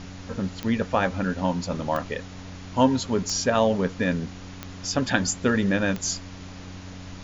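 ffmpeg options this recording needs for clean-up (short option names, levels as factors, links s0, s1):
-af "adeclick=t=4,bandreject=f=92.2:t=h:w=4,bandreject=f=184.4:t=h:w=4,bandreject=f=276.6:t=h:w=4,afftdn=nr=30:nf=-40"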